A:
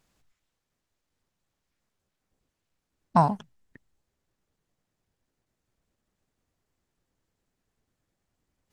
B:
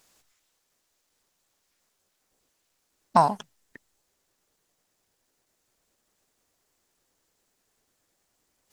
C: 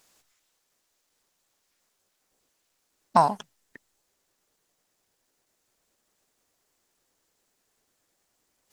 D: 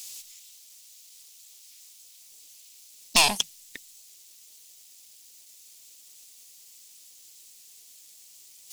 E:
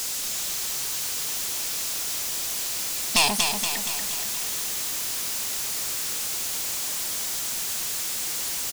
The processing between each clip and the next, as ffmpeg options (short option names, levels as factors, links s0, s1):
-filter_complex "[0:a]bass=f=250:g=-12,treble=f=4000:g=7,asplit=2[s0][s1];[s1]acompressor=threshold=0.0447:ratio=6,volume=1.12[s2];[s0][s2]amix=inputs=2:normalize=0"
-af "lowshelf=f=150:g=-4"
-af "aeval=exprs='(tanh(20*val(0)+0.5)-tanh(0.5))/20':c=same,aexciter=amount=3.9:drive=9.9:freq=2300,volume=1.5"
-filter_complex "[0:a]aeval=exprs='val(0)+0.5*0.075*sgn(val(0))':c=same,asplit=2[s0][s1];[s1]aecho=0:1:236|472|708|944|1180|1416|1652|1888:0.531|0.303|0.172|0.0983|0.056|0.0319|0.0182|0.0104[s2];[s0][s2]amix=inputs=2:normalize=0,volume=0.75"